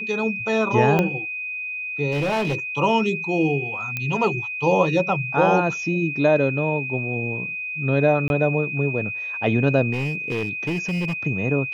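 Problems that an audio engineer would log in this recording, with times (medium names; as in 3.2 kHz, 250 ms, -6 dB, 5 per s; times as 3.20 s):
whine 2.5 kHz -27 dBFS
0.99 s: pop -8 dBFS
2.11–2.55 s: clipped -19 dBFS
3.97 s: pop -12 dBFS
8.28–8.30 s: dropout 21 ms
9.92–11.13 s: clipped -20.5 dBFS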